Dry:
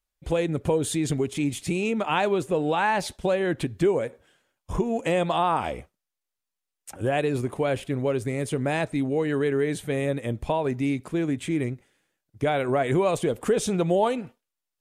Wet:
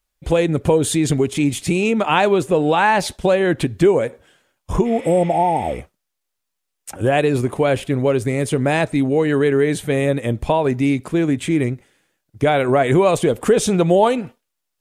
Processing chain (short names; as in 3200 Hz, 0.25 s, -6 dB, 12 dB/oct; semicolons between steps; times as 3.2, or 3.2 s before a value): spectral repair 4.88–5.7, 910–7400 Hz after; gain +8 dB